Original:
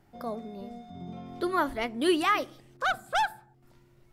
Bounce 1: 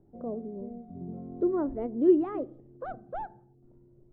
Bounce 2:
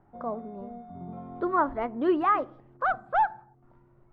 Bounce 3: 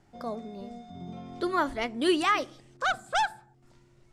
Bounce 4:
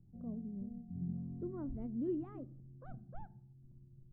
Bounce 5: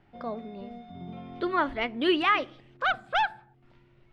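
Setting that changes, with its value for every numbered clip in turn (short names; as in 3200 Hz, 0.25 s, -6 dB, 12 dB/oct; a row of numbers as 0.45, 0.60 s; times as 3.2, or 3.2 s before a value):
synth low-pass, frequency: 420, 1100, 7600, 160, 2900 Hz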